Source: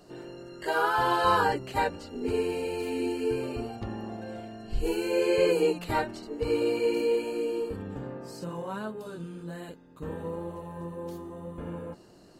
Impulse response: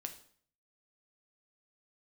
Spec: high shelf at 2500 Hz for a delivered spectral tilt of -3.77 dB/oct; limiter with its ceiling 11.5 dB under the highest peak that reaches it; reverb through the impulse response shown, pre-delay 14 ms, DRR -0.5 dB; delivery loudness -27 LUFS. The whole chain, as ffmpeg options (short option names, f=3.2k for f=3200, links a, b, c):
-filter_complex "[0:a]highshelf=f=2.5k:g=-7.5,alimiter=limit=-24dB:level=0:latency=1,asplit=2[a][b];[1:a]atrim=start_sample=2205,adelay=14[c];[b][c]afir=irnorm=-1:irlink=0,volume=3dB[d];[a][d]amix=inputs=2:normalize=0,volume=5dB"